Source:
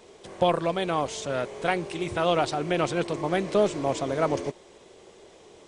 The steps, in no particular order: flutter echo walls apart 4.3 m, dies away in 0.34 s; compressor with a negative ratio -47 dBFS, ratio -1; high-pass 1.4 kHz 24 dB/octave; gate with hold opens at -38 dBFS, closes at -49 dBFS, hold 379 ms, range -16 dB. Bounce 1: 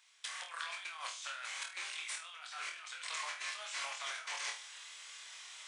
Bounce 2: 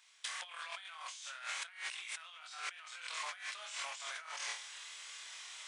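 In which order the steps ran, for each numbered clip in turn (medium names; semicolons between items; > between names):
high-pass > compressor with a negative ratio > flutter echo > gate with hold; flutter echo > gate with hold > high-pass > compressor with a negative ratio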